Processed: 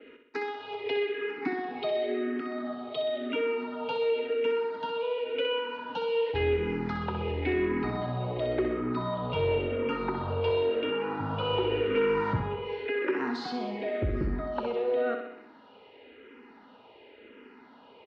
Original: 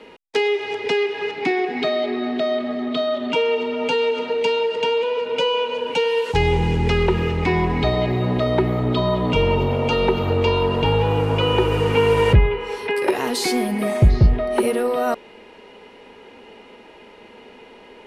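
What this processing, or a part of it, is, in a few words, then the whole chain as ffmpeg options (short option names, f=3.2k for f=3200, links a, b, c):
barber-pole phaser into a guitar amplifier: -filter_complex "[0:a]asettb=1/sr,asplit=3[a][b][c];[a]atrim=end=10.504[d];[b]atrim=start=10.5:end=11.2,asetpts=PTS-STARTPTS,afade=t=in:d=0.004:c=qsin,afade=t=out:st=0.696:d=0.004:c=qsin,highpass=220[e];[c]atrim=start=11.196[f];[d][e]acrossfade=d=0.004:c1=hsin:c2=qsin[g];[g][f]acrossfade=d=0.004:c1=qsin:c2=hsin,asplit=2[h][i];[i]afreqshift=-0.93[j];[h][j]amix=inputs=2:normalize=1,asoftclip=type=tanh:threshold=-11dB,highpass=76,equalizer=f=170:t=q:w=4:g=-5,equalizer=f=280:t=q:w=4:g=8,equalizer=f=1.4k:t=q:w=4:g=6,lowpass=f=4.3k:w=0.5412,lowpass=f=4.3k:w=1.3066,aecho=1:1:63|126|189|252|315|378|441:0.447|0.259|0.15|0.0872|0.0505|0.0293|0.017,adynamicequalizer=threshold=0.00708:dfrequency=3700:dqfactor=0.7:tfrequency=3700:tqfactor=0.7:attack=5:release=100:ratio=0.375:range=2.5:mode=cutabove:tftype=highshelf,volume=-8dB"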